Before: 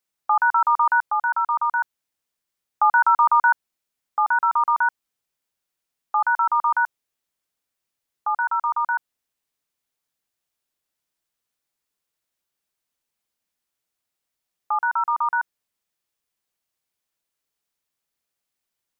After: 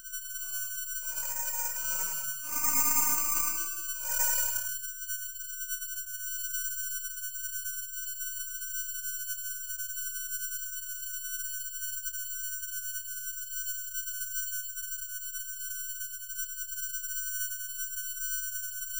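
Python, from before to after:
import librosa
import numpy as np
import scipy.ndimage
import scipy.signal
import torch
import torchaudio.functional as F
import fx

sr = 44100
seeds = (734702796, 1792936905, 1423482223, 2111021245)

p1 = fx.spec_dropout(x, sr, seeds[0], share_pct=64)
p2 = fx.tremolo_random(p1, sr, seeds[1], hz=2.2, depth_pct=95)
p3 = p2 + 10.0 ** (-30.0 / 20.0) * np.sin(2.0 * np.pi * 1500.0 * np.arange(len(p2)) / sr)
p4 = fx.comb_fb(p3, sr, f0_hz=580.0, decay_s=0.26, harmonics='all', damping=0.0, mix_pct=90)
p5 = fx.paulstretch(p4, sr, seeds[2], factor=5.6, window_s=0.1, from_s=8.17)
p6 = np.maximum(p5, 0.0)
p7 = fx.doubler(p6, sr, ms=30.0, db=-11)
p8 = p7 + fx.echo_single(p7, sr, ms=104, db=-6.5, dry=0)
p9 = (np.kron(scipy.signal.resample_poly(p8, 1, 6), np.eye(6)[0]) * 6)[:len(p8)]
y = F.gain(torch.from_numpy(p9), 7.0).numpy()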